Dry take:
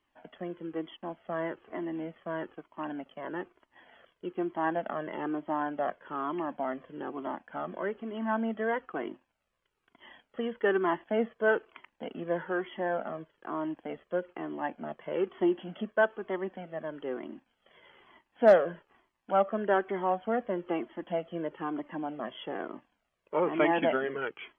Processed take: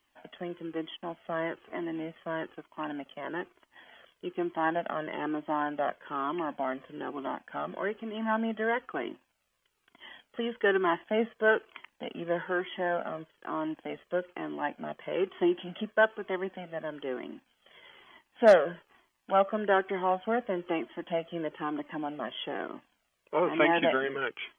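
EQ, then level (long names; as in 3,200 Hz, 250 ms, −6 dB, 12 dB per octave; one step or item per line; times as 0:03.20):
high-shelf EQ 2,500 Hz +11 dB
0.0 dB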